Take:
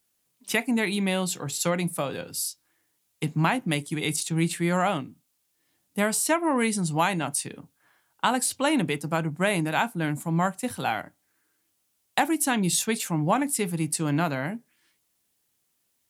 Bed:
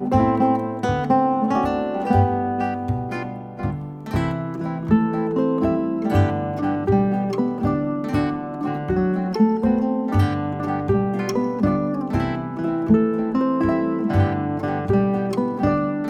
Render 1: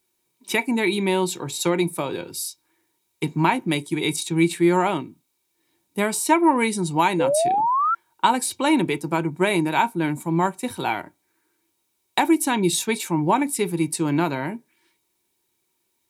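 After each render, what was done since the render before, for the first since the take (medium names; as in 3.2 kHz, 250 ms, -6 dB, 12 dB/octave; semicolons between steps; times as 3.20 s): small resonant body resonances 360/930/2300/3800 Hz, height 14 dB, ringing for 55 ms; 7.19–7.95 s: painted sound rise 480–1400 Hz -20 dBFS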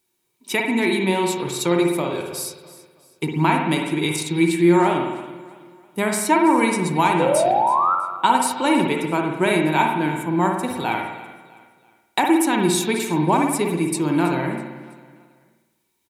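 feedback delay 326 ms, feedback 40%, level -18 dB; spring tank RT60 1 s, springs 52 ms, chirp 50 ms, DRR 2 dB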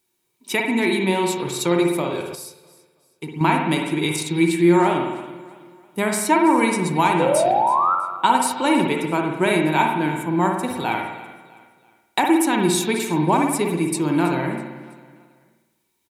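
2.35–3.41 s: feedback comb 220 Hz, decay 1 s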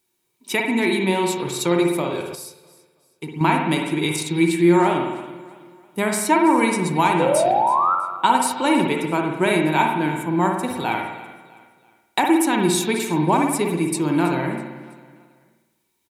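no audible change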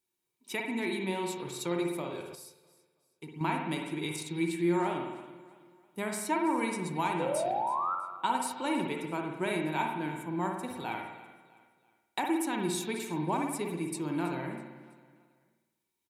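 trim -13 dB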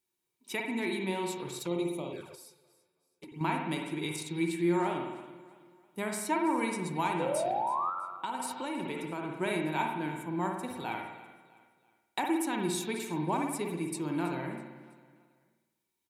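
1.59–3.32 s: touch-sensitive flanger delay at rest 11.8 ms, full sweep at -32.5 dBFS; 7.89–9.31 s: compression, threshold -31 dBFS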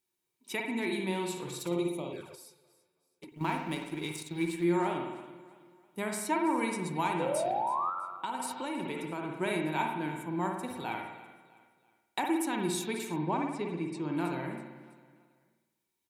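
0.86–1.88 s: flutter echo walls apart 10 m, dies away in 0.37 s; 3.29–4.64 s: companding laws mixed up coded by A; 13.16–14.17 s: distance through air 120 m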